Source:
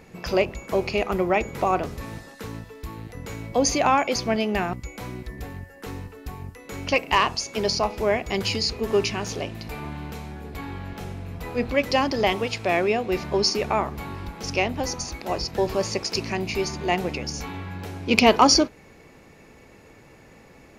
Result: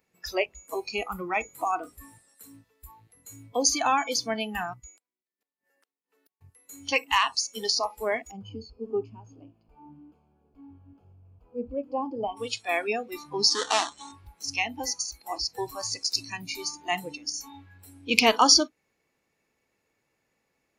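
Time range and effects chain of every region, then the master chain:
0:04.86–0:06.41: high-pass filter 230 Hz 24 dB per octave + gate with flip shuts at −32 dBFS, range −34 dB
0:08.31–0:12.37: moving average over 23 samples + hum removal 170.7 Hz, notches 32
0:13.50–0:14.12: each half-wave held at its own peak + low-pass filter 7,300 Hz 24 dB per octave + low-shelf EQ 210 Hz −10.5 dB
whole clip: spectral tilt +2 dB per octave; noise reduction from a noise print of the clip's start 21 dB; level −3.5 dB

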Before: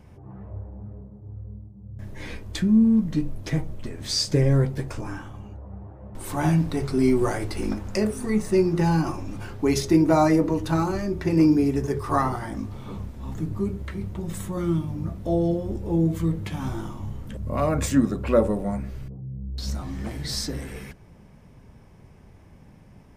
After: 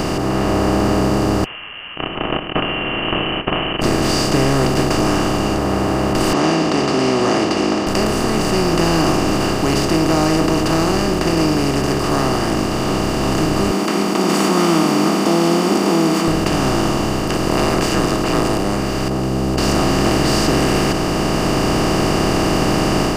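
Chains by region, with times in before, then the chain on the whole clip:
0:01.44–0:03.82: noise gate −32 dBFS, range −35 dB + downward compressor 4 to 1, threshold −28 dBFS + voice inversion scrambler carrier 3,000 Hz
0:06.33–0:07.87: Chebyshev band-pass filter 230–6,400 Hz, order 4 + high-frequency loss of the air 140 metres + notch filter 1,500 Hz, Q 5.2
0:13.71–0:16.28: Butterworth high-pass 190 Hz 96 dB per octave + comb filter 0.9 ms, depth 95%
0:17.28–0:18.57: ceiling on every frequency bin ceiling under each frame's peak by 20 dB + frequency shifter −78 Hz
whole clip: compressor on every frequency bin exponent 0.2; automatic gain control; level −3 dB

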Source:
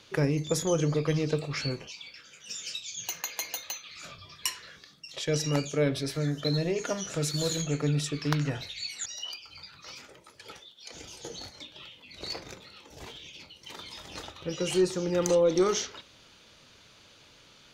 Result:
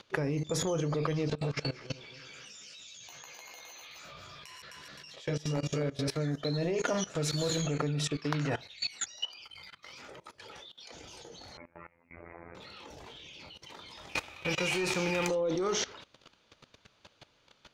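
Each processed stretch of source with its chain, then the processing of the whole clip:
0:01.28–0:06.08: feedback delay that plays each chunk backwards 130 ms, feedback 44%, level −4.5 dB + downward compressor 20 to 1, threshold −34 dBFS + double-tracking delay 14 ms −5.5 dB
0:08.16–0:08.81: downward expander −36 dBFS + low-shelf EQ 120 Hz −8.5 dB + upward compression, threshold −46 dBFS
0:09.44–0:09.93: hollow resonant body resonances 2,100/3,100 Hz, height 16 dB, ringing for 25 ms + power curve on the samples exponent 1.4
0:11.57–0:12.55: Butterworth low-pass 2,300 Hz 96 dB per octave + phases set to zero 84.9 Hz
0:14.08–0:15.27: spectral envelope flattened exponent 0.6 + parametric band 2,400 Hz +15 dB 0.27 octaves
whole clip: high-shelf EQ 8,000 Hz −10 dB; output level in coarse steps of 19 dB; parametric band 830 Hz +4 dB 1.7 octaves; level +6.5 dB

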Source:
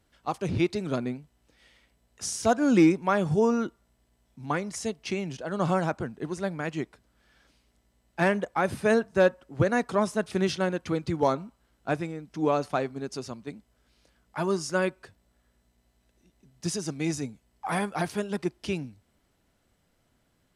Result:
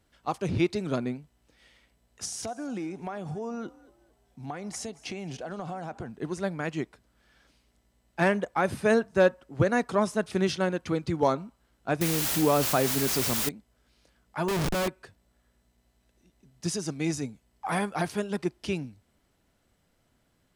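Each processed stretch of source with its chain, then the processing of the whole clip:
0:02.25–0:06.09: parametric band 740 Hz +10.5 dB 0.21 octaves + downward compressor 8 to 1, threshold −32 dBFS + echo with shifted repeats 224 ms, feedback 34%, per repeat +56 Hz, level −21 dB
0:12.01–0:13.49: low-shelf EQ 170 Hz +5.5 dB + bit-depth reduction 6 bits, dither triangular + envelope flattener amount 50%
0:14.48–0:14.88: parametric band 7,600 Hz −7.5 dB 1 octave + comparator with hysteresis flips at −34 dBFS
whole clip: no processing

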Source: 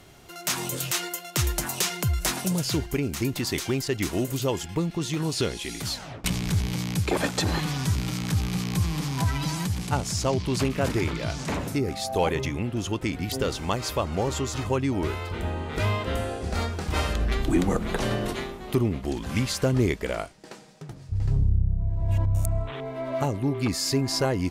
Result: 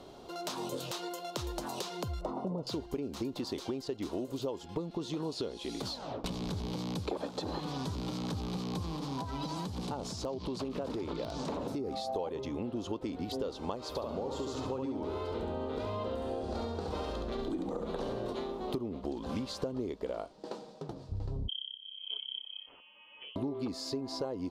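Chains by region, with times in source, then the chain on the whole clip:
0:02.21–0:02.67: Savitzky-Golay smoothing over 65 samples + one half of a high-frequency compander encoder only
0:08.95–0:12.15: downward compressor 8 to 1, threshold −28 dBFS + wrap-around overflow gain 21 dB
0:13.88–0:18.32: downward compressor 2.5 to 1, threshold −27 dBFS + repeating echo 69 ms, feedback 40%, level −4 dB
0:21.48–0:23.36: noise gate −21 dBFS, range −18 dB + double-tracking delay 13 ms −11 dB + voice inversion scrambler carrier 3,200 Hz
whole clip: octave-band graphic EQ 125/250/500/1,000/2,000/4,000 Hz −4/+7/+10/+8/−9/+10 dB; downward compressor 10 to 1, threshold −27 dBFS; high-shelf EQ 5,100 Hz −10 dB; level −5.5 dB

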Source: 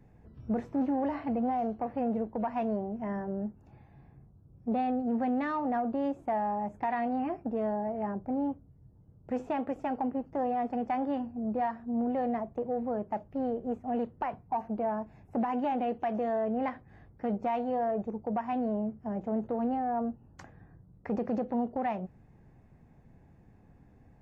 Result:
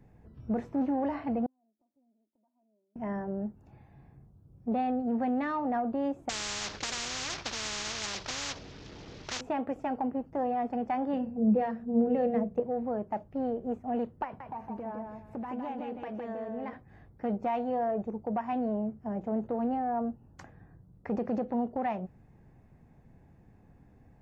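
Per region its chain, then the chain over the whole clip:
0:01.46–0:02.96: four-pole ladder band-pass 340 Hz, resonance 20% + comb filter 3.2 ms, depth 82% + gate with flip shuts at −47 dBFS, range −31 dB
0:06.29–0:09.41: variable-slope delta modulation 32 kbit/s + every bin compressed towards the loudest bin 10 to 1
0:11.13–0:12.60: mains-hum notches 60/120/180/240/300/360/420/480/540/600 Hz + dynamic equaliser 1,000 Hz, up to −7 dB, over −47 dBFS, Q 2 + hollow resonant body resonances 200/470/2,700 Hz, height 14 dB, ringing for 95 ms
0:14.24–0:16.73: notch filter 710 Hz, Q 8.5 + downward compressor 2.5 to 1, threshold −38 dBFS + repeating echo 161 ms, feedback 25%, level −4.5 dB
whole clip: no processing

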